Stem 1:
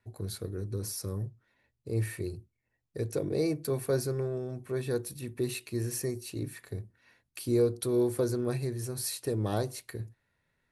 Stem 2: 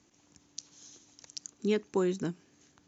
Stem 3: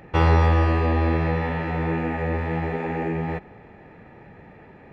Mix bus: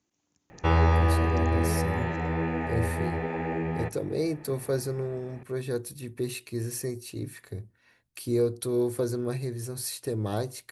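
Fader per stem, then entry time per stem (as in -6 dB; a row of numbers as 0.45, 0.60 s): +0.5, -12.5, -4.0 dB; 0.80, 0.00, 0.50 s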